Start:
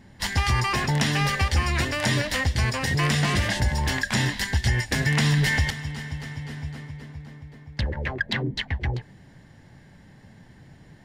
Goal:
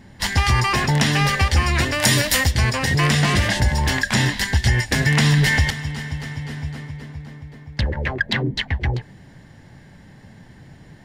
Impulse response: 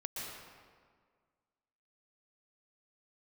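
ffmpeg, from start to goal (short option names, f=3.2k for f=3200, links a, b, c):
-filter_complex "[0:a]asplit=3[a][b][c];[a]afade=t=out:st=2.01:d=0.02[d];[b]aemphasis=mode=production:type=50fm,afade=t=in:st=2.01:d=0.02,afade=t=out:st=2.5:d=0.02[e];[c]afade=t=in:st=2.5:d=0.02[f];[d][e][f]amix=inputs=3:normalize=0,volume=5dB"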